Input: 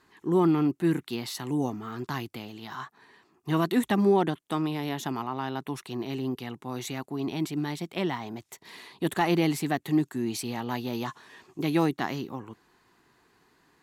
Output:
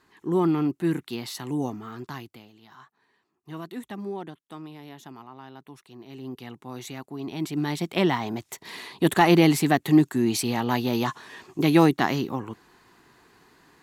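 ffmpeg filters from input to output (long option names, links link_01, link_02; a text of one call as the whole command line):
ffmpeg -i in.wav -af "volume=19dB,afade=type=out:start_time=1.72:duration=0.8:silence=0.251189,afade=type=in:start_time=6.05:duration=0.41:silence=0.354813,afade=type=in:start_time=7.3:duration=0.63:silence=0.316228" out.wav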